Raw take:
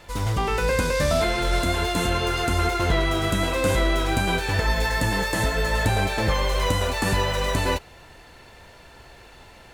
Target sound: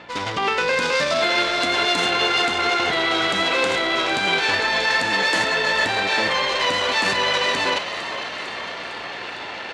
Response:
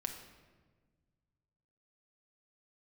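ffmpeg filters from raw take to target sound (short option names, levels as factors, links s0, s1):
-filter_complex "[0:a]areverse,acompressor=mode=upward:threshold=0.0562:ratio=2.5,areverse,alimiter=limit=0.158:level=0:latency=1:release=47,crystalizer=i=7:c=0,adynamicsmooth=sensitivity=2:basefreq=2000,aeval=exprs='val(0)+0.00891*(sin(2*PI*60*n/s)+sin(2*PI*2*60*n/s)/2+sin(2*PI*3*60*n/s)/3+sin(2*PI*4*60*n/s)/4+sin(2*PI*5*60*n/s)/5)':c=same,highpass=260,lowpass=3900,asplit=2[s0][s1];[s1]asplit=8[s2][s3][s4][s5][s6][s7][s8][s9];[s2]adelay=454,afreqshift=57,volume=0.282[s10];[s3]adelay=908,afreqshift=114,volume=0.178[s11];[s4]adelay=1362,afreqshift=171,volume=0.112[s12];[s5]adelay=1816,afreqshift=228,volume=0.0708[s13];[s6]adelay=2270,afreqshift=285,volume=0.0442[s14];[s7]adelay=2724,afreqshift=342,volume=0.0279[s15];[s8]adelay=3178,afreqshift=399,volume=0.0176[s16];[s9]adelay=3632,afreqshift=456,volume=0.0111[s17];[s10][s11][s12][s13][s14][s15][s16][s17]amix=inputs=8:normalize=0[s18];[s0][s18]amix=inputs=2:normalize=0,volume=1.33"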